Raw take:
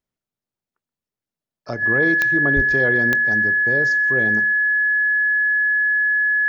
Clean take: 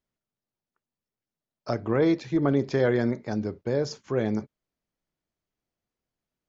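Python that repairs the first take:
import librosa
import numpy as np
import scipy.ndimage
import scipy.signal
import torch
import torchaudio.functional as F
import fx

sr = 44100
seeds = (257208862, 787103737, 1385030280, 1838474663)

y = fx.fix_declick_ar(x, sr, threshold=10.0)
y = fx.notch(y, sr, hz=1700.0, q=30.0)
y = fx.highpass(y, sr, hz=140.0, slope=24, at=(2.55, 2.67), fade=0.02)
y = fx.fix_echo_inverse(y, sr, delay_ms=127, level_db=-21.0)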